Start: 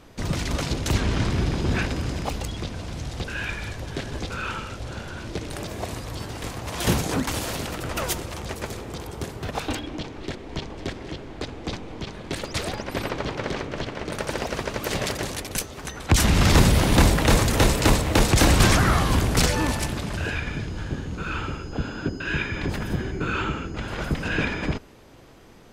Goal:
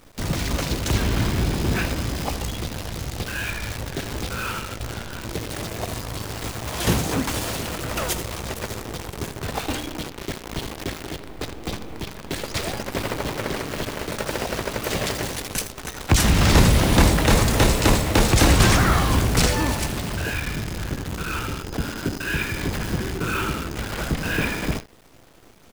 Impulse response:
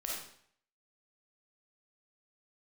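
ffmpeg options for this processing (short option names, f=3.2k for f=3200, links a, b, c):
-filter_complex "[0:a]aecho=1:1:18|80:0.178|0.2,asplit=2[a][b];[1:a]atrim=start_sample=2205,afade=t=out:st=0.17:d=0.01,atrim=end_sample=7938[c];[b][c]afir=irnorm=-1:irlink=0,volume=-15.5dB[d];[a][d]amix=inputs=2:normalize=0,acrusher=bits=6:dc=4:mix=0:aa=0.000001"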